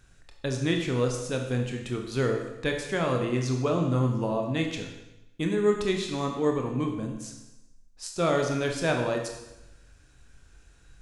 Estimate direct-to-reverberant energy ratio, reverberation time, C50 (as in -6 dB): 2.0 dB, 0.90 s, 5.5 dB